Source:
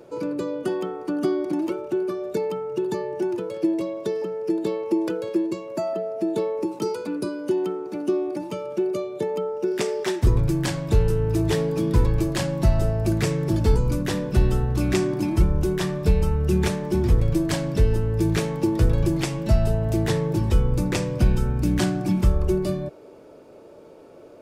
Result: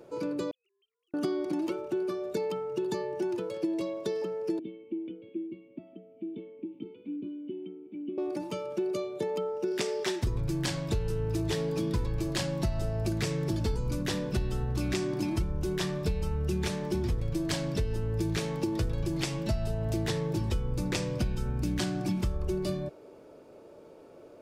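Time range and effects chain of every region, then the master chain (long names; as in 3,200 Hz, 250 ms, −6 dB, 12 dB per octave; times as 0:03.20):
0:00.51–0:01.14: three sine waves on the formant tracks + inverse Chebyshev high-pass filter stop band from 1,700 Hz, stop band 70 dB + upward compression, threshold −54 dBFS
0:04.59–0:08.18: formant resonators in series i + high-shelf EQ 2,700 Hz +8.5 dB
whole clip: dynamic equaliser 4,300 Hz, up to +6 dB, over −47 dBFS, Q 0.75; downward compressor, threshold −21 dBFS; level −5 dB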